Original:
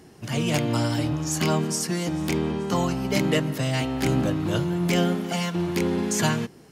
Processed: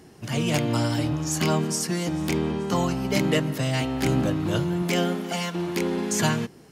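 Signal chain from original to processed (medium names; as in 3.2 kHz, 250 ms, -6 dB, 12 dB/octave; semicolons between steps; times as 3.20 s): 4.82–6.12 s: peaking EQ 94 Hz -11.5 dB 1.3 oct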